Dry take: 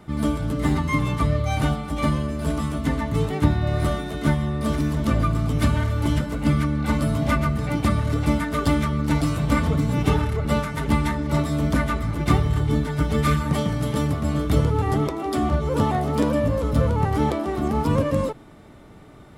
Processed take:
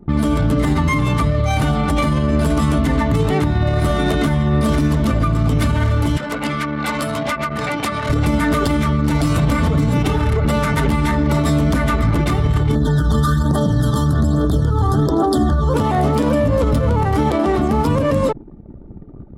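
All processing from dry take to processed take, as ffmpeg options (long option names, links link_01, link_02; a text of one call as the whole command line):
ffmpeg -i in.wav -filter_complex "[0:a]asettb=1/sr,asplit=3[link_01][link_02][link_03];[link_01]atrim=end=6.174[link_04];[link_02]atrim=start=6.17:end=8.1,asetpts=PTS-STARTPTS,afade=type=in:duration=0.004:curve=qsin,afade=type=out:start_time=1.926:duration=0.004:curve=qsin,highpass=frequency=900:poles=1,acompressor=threshold=-32dB:ratio=8:attack=3.2:release=140:knee=1:detection=peak,acrusher=bits=8:mode=log:mix=0:aa=0.000001[link_05];[link_03]atrim=start=8.096[link_06];[link_04][link_05]acrossfade=duration=0.004:curve1=hsin:curve2=qsin[link_07];[link_07][link_06]acrossfade=duration=0.004:curve1=qsin:curve2=hsin,asettb=1/sr,asplit=3[link_08][link_09][link_10];[link_08]atrim=end=12.754[link_11];[link_09]atrim=start=12.75:end=15.74,asetpts=PTS-STARTPTS,afade=type=in:duration=0.004:curve=qsin,afade=type=out:start_time=2.986:duration=0.004:curve=qsin,asuperstop=centerf=2400:order=20:qfactor=1.9,bandreject=frequency=50:width_type=h:width=6,bandreject=frequency=100:width_type=h:width=6,aphaser=in_gain=1:out_gain=1:delay=1:decay=0.48:speed=1.2:type=triangular[link_12];[link_10]atrim=start=15.736[link_13];[link_11][link_12]acrossfade=duration=0.004:curve1=hsin:curve2=qsin[link_14];[link_14][link_13]acrossfade=duration=0.004:curve1=qsin:curve2=hsin,anlmdn=0.631,acompressor=threshold=-23dB:ratio=6,alimiter=level_in=23dB:limit=-1dB:release=50:level=0:latency=1,volume=-7.5dB" out.wav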